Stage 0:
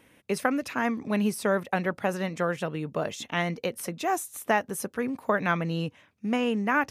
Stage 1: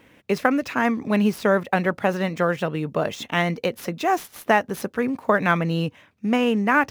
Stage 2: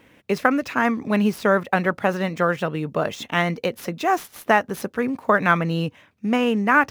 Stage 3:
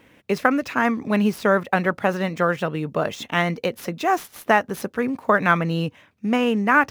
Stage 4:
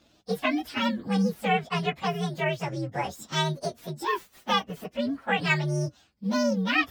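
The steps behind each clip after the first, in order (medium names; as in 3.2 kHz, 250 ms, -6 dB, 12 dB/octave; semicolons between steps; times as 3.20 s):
median filter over 5 samples; trim +6 dB
dynamic bell 1.3 kHz, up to +4 dB, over -31 dBFS, Q 2
no audible change
frequency axis rescaled in octaves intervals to 129%; trim -3.5 dB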